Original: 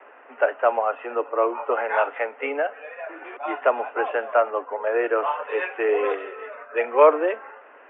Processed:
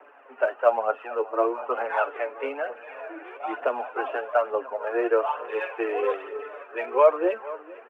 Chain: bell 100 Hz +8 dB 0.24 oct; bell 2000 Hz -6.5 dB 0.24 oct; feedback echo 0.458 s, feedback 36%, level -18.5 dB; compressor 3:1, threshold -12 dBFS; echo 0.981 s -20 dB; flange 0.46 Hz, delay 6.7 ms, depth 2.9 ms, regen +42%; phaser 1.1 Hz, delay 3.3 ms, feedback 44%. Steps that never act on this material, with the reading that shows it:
bell 100 Hz: input band starts at 230 Hz

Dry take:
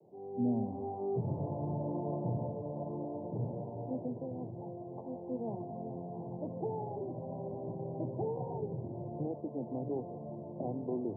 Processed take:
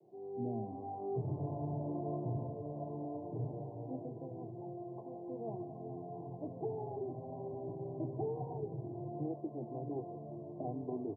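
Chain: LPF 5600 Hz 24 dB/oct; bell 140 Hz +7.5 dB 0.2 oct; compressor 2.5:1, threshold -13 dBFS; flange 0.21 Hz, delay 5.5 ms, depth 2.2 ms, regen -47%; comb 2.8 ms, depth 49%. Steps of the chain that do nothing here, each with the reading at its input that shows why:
LPF 5600 Hz: input band ends at 1000 Hz; compressor, threshold -13 dBFS: input peak -21.5 dBFS

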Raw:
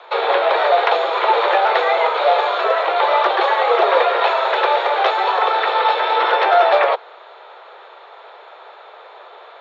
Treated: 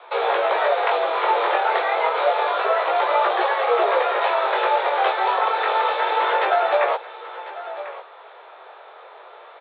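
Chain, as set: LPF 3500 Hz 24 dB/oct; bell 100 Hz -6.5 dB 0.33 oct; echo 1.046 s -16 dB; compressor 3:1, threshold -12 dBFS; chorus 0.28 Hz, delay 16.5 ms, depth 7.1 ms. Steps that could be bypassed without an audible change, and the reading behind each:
bell 100 Hz: input band starts at 320 Hz

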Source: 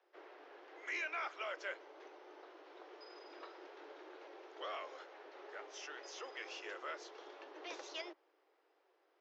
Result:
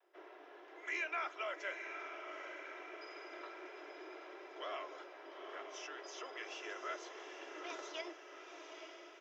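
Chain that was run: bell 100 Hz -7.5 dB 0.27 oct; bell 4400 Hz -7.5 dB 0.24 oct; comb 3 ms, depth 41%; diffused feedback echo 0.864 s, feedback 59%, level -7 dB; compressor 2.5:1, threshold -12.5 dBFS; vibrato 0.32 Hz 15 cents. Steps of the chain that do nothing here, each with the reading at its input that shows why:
bell 100 Hz: input band starts at 250 Hz; compressor, threshold -12.5 dBFS: input peak -27.5 dBFS

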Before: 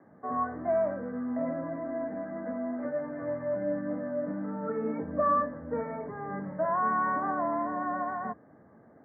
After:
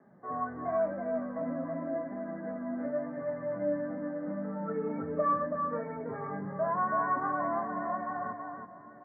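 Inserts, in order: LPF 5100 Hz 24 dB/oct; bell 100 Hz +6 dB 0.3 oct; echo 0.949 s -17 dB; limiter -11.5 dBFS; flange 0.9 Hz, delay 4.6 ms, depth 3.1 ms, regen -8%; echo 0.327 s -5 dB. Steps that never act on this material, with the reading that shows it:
LPF 5100 Hz: input band ends at 1800 Hz; limiter -11.5 dBFS: input peak -17.5 dBFS

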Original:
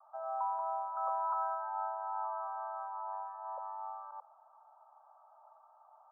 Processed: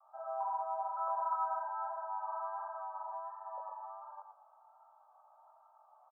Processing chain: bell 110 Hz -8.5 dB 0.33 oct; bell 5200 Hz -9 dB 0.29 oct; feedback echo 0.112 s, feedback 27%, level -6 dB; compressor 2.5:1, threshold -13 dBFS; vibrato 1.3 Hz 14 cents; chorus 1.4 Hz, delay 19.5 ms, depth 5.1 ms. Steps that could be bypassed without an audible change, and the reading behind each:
bell 110 Hz: input band starts at 540 Hz; bell 5200 Hz: input band ends at 1600 Hz; compressor, threshold -13 dBFS: input peak -23.0 dBFS

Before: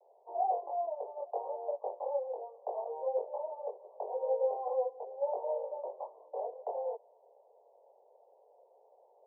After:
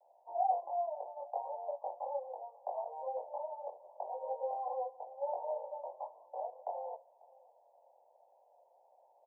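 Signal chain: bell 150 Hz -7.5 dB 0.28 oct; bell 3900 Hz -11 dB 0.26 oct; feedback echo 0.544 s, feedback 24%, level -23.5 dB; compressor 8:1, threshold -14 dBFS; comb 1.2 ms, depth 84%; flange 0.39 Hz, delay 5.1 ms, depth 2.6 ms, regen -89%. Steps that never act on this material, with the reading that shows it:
bell 150 Hz: input band starts at 360 Hz; bell 3900 Hz: input band ends at 1100 Hz; compressor, threshold -14 dBFS: input peak -21.0 dBFS

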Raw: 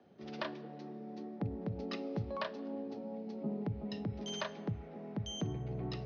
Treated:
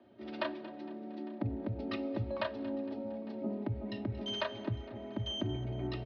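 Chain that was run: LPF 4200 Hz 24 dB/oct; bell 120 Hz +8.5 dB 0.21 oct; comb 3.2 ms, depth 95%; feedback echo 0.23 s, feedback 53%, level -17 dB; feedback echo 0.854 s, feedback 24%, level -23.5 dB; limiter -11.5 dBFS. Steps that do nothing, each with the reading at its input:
limiter -11.5 dBFS: input peak -21.0 dBFS

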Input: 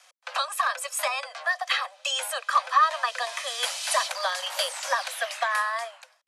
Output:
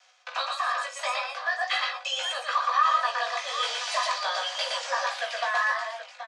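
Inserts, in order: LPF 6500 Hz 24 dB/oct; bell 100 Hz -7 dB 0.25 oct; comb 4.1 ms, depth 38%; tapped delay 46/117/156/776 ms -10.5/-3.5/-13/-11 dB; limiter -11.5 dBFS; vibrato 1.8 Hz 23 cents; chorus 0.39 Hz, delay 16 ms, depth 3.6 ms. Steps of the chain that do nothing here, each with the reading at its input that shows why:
bell 100 Hz: input band starts at 450 Hz

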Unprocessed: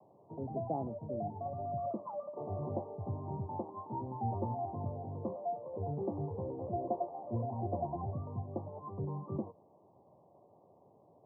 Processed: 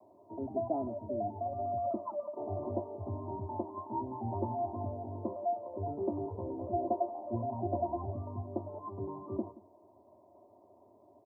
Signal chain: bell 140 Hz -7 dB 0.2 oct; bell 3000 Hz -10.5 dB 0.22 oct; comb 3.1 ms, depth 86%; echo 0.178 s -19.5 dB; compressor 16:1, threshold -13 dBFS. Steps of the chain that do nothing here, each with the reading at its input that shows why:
bell 3000 Hz: input band ends at 1100 Hz; compressor, threshold -13 dBFS: input peak -20.0 dBFS

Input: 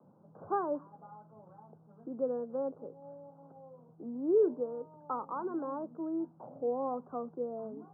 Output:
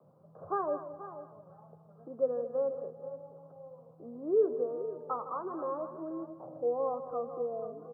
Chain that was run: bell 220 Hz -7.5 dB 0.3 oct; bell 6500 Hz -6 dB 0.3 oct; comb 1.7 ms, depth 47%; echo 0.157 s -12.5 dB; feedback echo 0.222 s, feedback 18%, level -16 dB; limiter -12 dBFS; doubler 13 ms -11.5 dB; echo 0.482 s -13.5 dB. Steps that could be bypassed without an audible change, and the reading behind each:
bell 6500 Hz: input band ends at 1400 Hz; limiter -12 dBFS: input peak -18.5 dBFS

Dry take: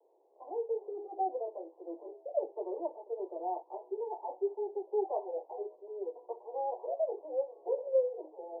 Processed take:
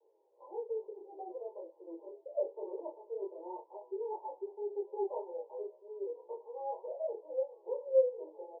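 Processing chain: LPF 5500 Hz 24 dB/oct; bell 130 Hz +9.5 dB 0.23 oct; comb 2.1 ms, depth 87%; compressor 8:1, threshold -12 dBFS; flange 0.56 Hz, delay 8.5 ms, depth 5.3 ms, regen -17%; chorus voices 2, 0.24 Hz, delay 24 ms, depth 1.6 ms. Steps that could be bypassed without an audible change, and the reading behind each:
LPF 5500 Hz: input band ends at 1000 Hz; bell 130 Hz: input band starts at 300 Hz; compressor, threshold -12 dBFS: input peak -14.5 dBFS

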